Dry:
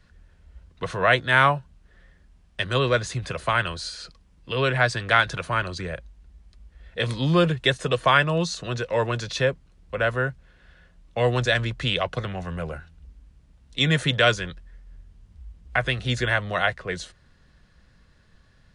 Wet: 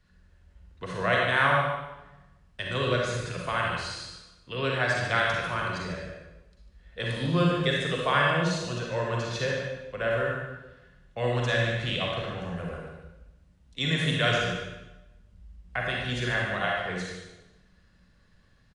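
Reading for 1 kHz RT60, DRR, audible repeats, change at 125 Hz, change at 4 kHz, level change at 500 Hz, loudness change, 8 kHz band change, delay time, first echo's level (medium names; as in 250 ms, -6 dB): 1.0 s, -3.0 dB, 1, -4.0 dB, -4.5 dB, -4.0 dB, -4.0 dB, -4.0 dB, 147 ms, -9.0 dB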